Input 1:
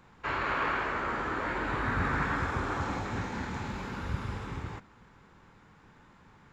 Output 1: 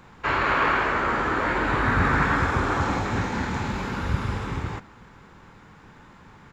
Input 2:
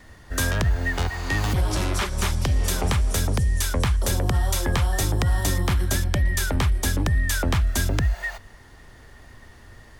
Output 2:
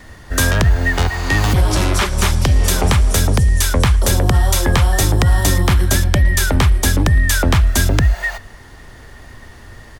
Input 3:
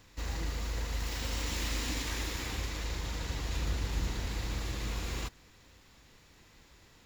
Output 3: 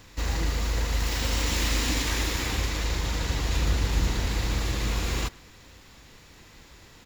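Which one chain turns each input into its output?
far-end echo of a speakerphone 110 ms, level −22 dB
level +8.5 dB

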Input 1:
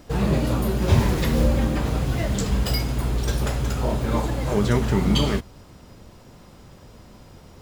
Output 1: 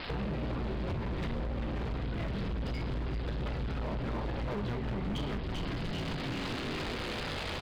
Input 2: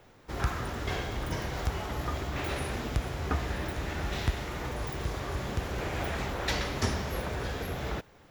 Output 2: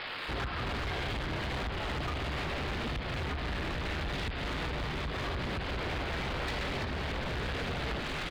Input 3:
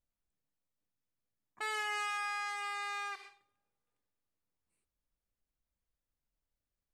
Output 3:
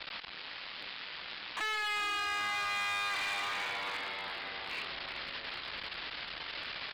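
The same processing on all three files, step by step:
spike at every zero crossing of −17 dBFS
camcorder AGC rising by 5.4 dB per second
high-shelf EQ 2,000 Hz +6 dB
downsampling to 11,025 Hz
high-frequency loss of the air 430 metres
on a send: echo with shifted repeats 393 ms, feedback 63%, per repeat −110 Hz, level −8.5 dB
on the sum: downward compressor 4 to 1, threshold −31 dBFS
hard clipping −33 dBFS
brickwall limiter −36.5 dBFS
level +5 dB

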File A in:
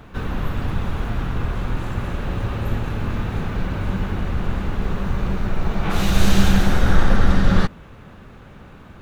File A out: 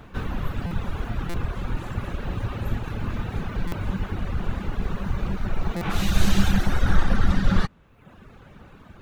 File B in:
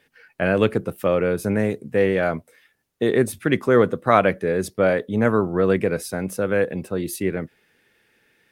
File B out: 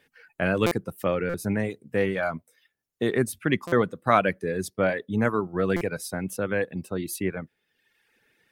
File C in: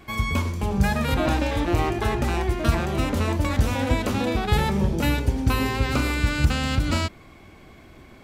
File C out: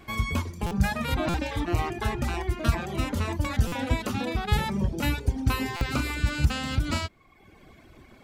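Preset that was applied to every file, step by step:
reverb reduction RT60 0.92 s
dynamic equaliser 470 Hz, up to −4 dB, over −34 dBFS, Q 1.3
buffer that repeats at 0:00.66/0:01.29/0:03.67/0:05.76, samples 256, times 8
level −2 dB

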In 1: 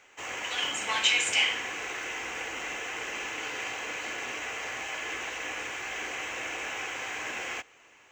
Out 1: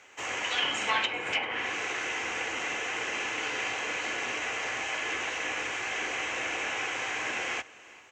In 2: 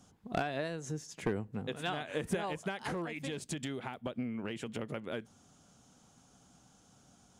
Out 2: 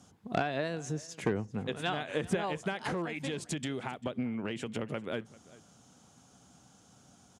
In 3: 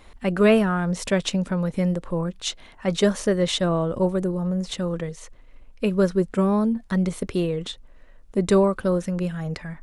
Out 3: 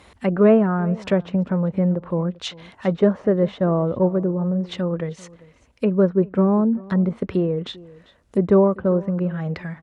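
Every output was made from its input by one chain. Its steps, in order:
treble cut that deepens with the level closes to 1,100 Hz, closed at −21 dBFS
high-pass filter 61 Hz 24 dB per octave
on a send: single-tap delay 394 ms −21.5 dB
on the sum: level +3 dB

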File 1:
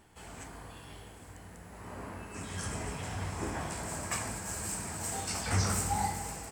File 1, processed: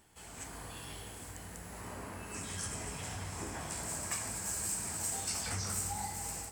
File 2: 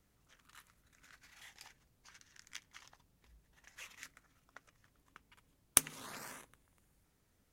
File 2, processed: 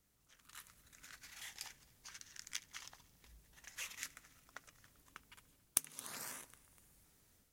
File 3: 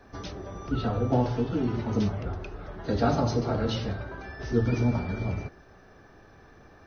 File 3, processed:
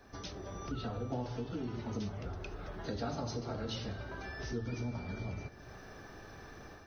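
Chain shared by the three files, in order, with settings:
automatic gain control gain up to 8 dB
echo machine with several playback heads 73 ms, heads first and third, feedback 47%, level −24 dB
downward compressor 2.5 to 1, threshold −37 dBFS
high-shelf EQ 3,600 Hz +9 dB
level −6 dB

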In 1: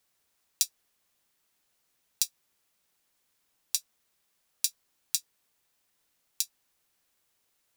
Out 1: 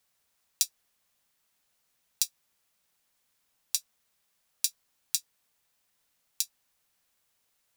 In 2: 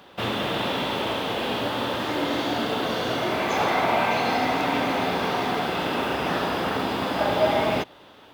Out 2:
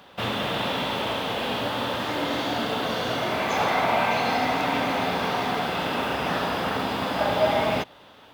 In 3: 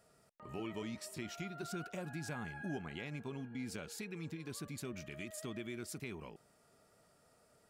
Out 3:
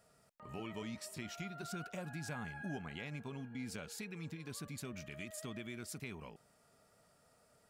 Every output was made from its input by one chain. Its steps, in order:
parametric band 350 Hz −5.5 dB 0.52 octaves

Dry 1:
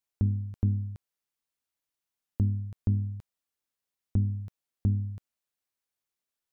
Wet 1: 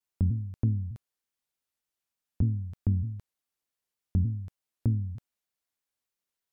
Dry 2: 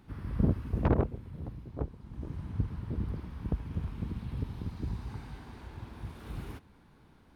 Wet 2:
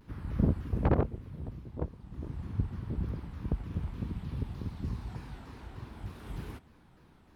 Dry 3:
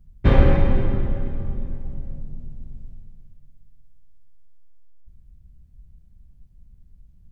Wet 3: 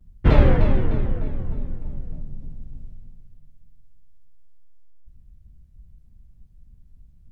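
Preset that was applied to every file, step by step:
pitch modulation by a square or saw wave saw down 3.3 Hz, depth 250 cents

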